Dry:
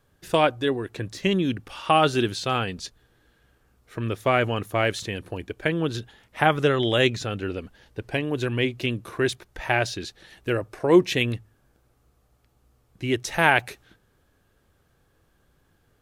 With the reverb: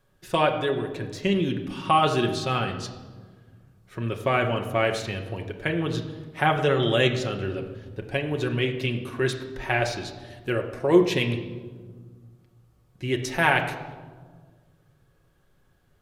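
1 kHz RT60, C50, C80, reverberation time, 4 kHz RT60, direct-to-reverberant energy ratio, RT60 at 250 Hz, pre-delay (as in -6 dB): 1.4 s, 9.0 dB, 10.5 dB, 1.6 s, 0.95 s, 2.5 dB, 2.3 s, 5 ms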